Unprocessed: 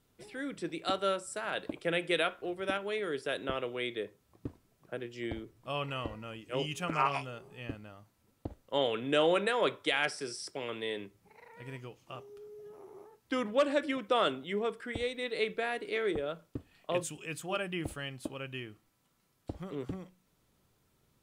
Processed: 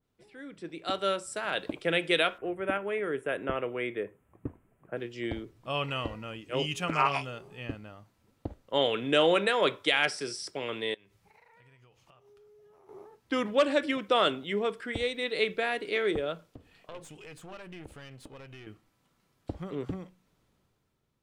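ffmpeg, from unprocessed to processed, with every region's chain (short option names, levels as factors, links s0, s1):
-filter_complex "[0:a]asettb=1/sr,asplit=3[s0][s1][s2];[s0]atrim=end=2.384[s3];[s1]atrim=start=2.38:end=4.97,asetpts=PTS-STARTPTS,afade=t=in:d=0.004:c=qsin,afade=t=out:st=2.586:d=0.004:c=qsin,asuperstop=centerf=4700:order=4:qfactor=0.74,highshelf=f=9700:g=-6.5[s4];[s2]atrim=start=4.966[s5];[s3][s4]acrossfade=d=0.004:c1=hsin:c2=qsin[s6];[s6][s5]acrossfade=d=0.004:c1=qsin:c2=hsin,asettb=1/sr,asplit=3[s7][s8][s9];[s7]atrim=end=10.944[s10];[s8]atrim=start=10.94:end=12.89,asetpts=PTS-STARTPTS,afade=t=in:d=0.004:c=qsin,afade=t=out:st=1.946:d=0.004:c=qsin,equalizer=f=280:w=0.93:g=-10,acompressor=threshold=0.00112:ratio=12:attack=3.2:release=140:knee=1:detection=peak[s11];[s9]atrim=start=12.886[s12];[s10][s11]acrossfade=d=0.004:c1=hsin:c2=qsin[s13];[s13][s12]acrossfade=d=0.004:c1=qsin:c2=hsin,asettb=1/sr,asplit=3[s14][s15][s16];[s14]atrim=end=16.484[s17];[s15]atrim=start=16.48:end=18.67,asetpts=PTS-STARTPTS,afade=t=in:d=0.004:c=qsin,afade=t=out:st=2.186:d=0.004:c=qsin,equalizer=f=470:t=o:w=0.25:g=6,acompressor=threshold=0.00398:ratio=2.5:attack=3.2:release=140:knee=1:detection=peak,aeval=exprs='clip(val(0),-1,0.00266)':c=same[s18];[s16]atrim=start=18.666[s19];[s17][s18]acrossfade=d=0.004:c1=hsin:c2=qsin[s20];[s20][s19]acrossfade=d=0.004:c1=qsin:c2=hsin,highshelf=f=7200:g=-9.5,dynaudnorm=f=250:g=7:m=3.55,adynamicequalizer=threshold=0.0224:dfrequency=2200:dqfactor=0.7:tfrequency=2200:tqfactor=0.7:attack=5:release=100:ratio=0.375:range=2.5:mode=boostabove:tftype=highshelf,volume=0.422"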